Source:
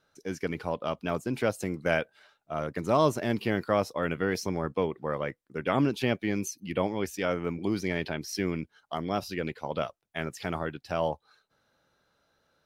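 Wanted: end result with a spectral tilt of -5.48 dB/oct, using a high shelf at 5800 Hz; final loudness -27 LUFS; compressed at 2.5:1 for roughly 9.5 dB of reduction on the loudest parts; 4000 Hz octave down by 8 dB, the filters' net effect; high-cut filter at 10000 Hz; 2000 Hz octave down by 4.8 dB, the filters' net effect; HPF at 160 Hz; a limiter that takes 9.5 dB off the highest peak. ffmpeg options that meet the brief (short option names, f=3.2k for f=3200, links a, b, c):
-af "highpass=160,lowpass=10k,equalizer=f=2k:t=o:g=-4,equalizer=f=4k:t=o:g=-8.5,highshelf=f=5.8k:g=-3.5,acompressor=threshold=-35dB:ratio=2.5,volume=16dB,alimiter=limit=-14.5dB:level=0:latency=1"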